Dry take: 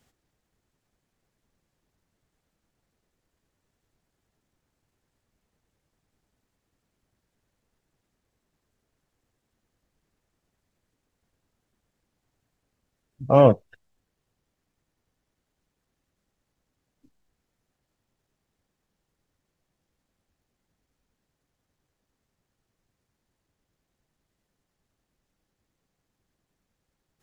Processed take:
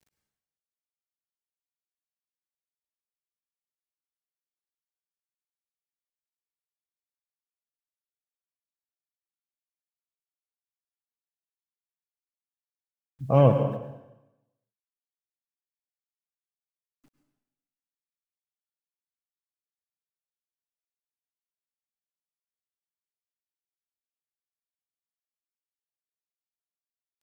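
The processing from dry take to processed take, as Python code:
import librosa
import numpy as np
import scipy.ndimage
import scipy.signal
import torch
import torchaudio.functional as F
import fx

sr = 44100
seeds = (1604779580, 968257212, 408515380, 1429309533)

y = fx.peak_eq(x, sr, hz=140.0, db=7.5, octaves=0.49)
y = fx.quant_dither(y, sr, seeds[0], bits=10, dither='none')
y = fx.rev_plate(y, sr, seeds[1], rt60_s=0.96, hf_ratio=0.95, predelay_ms=90, drr_db=6.5)
y = y * librosa.db_to_amplitude(-5.5)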